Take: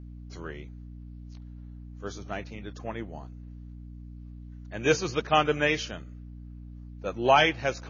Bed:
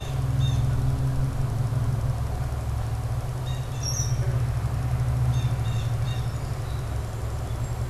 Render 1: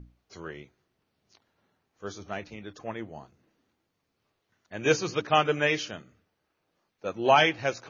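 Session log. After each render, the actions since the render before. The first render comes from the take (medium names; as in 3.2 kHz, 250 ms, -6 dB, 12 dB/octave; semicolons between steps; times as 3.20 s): hum notches 60/120/180/240/300 Hz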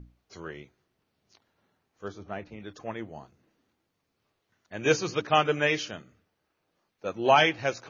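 2.08–2.60 s: low-pass 1.5 kHz 6 dB/octave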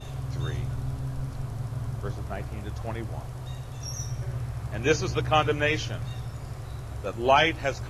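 add bed -7.5 dB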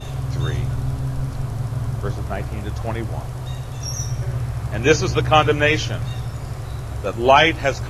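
trim +8 dB; peak limiter -1 dBFS, peak gain reduction 1.5 dB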